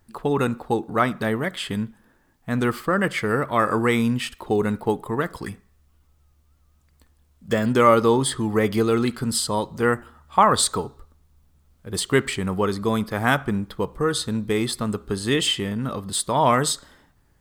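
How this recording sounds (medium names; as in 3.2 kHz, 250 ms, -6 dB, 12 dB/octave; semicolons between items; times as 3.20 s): noise floor -61 dBFS; spectral tilt -4.5 dB/octave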